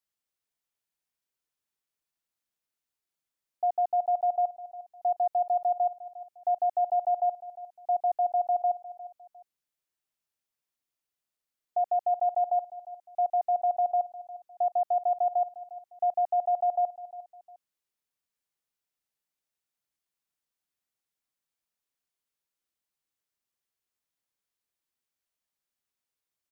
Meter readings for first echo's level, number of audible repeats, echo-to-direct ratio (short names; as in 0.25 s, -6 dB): -16.5 dB, 2, -16.0 dB